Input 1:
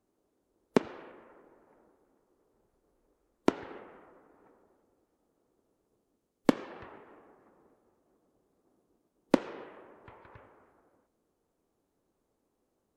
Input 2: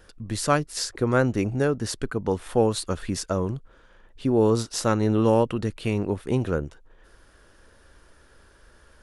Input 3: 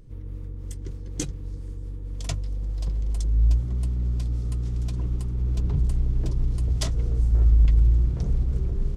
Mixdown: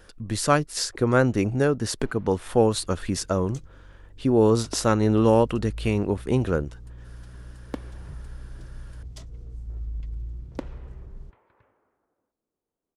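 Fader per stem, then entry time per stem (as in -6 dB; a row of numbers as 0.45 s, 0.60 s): -9.5 dB, +1.5 dB, -16.0 dB; 1.25 s, 0.00 s, 2.35 s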